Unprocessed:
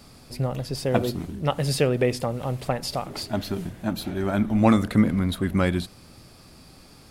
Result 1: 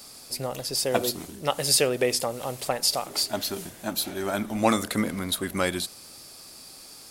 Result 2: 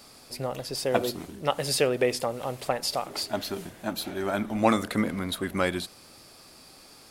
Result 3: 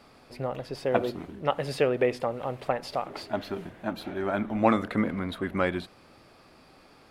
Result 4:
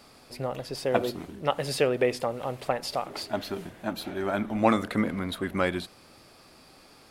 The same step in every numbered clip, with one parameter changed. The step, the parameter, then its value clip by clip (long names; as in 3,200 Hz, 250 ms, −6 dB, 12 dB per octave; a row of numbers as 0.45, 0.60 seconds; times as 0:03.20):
bass and treble, treble: +12, +3, −15, −5 decibels